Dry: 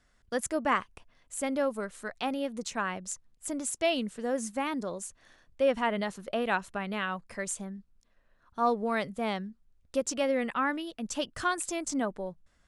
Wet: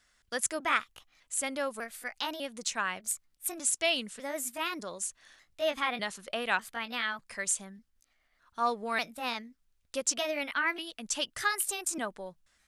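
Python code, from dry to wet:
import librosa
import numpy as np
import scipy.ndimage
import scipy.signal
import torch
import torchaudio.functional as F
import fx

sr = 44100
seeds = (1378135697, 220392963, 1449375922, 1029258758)

y = fx.pitch_trill(x, sr, semitones=2.5, every_ms=599)
y = fx.tilt_shelf(y, sr, db=-7.5, hz=970.0)
y = y * librosa.db_to_amplitude(-1.5)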